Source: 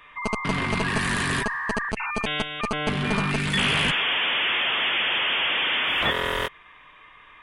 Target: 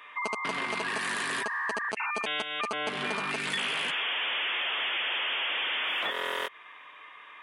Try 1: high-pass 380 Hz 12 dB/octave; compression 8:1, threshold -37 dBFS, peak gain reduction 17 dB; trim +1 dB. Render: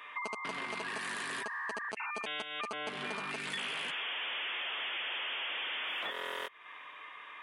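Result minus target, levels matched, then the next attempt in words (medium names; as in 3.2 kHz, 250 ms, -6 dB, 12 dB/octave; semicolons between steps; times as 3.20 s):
compression: peak gain reduction +7 dB
high-pass 380 Hz 12 dB/octave; compression 8:1, threshold -29 dBFS, peak gain reduction 10 dB; trim +1 dB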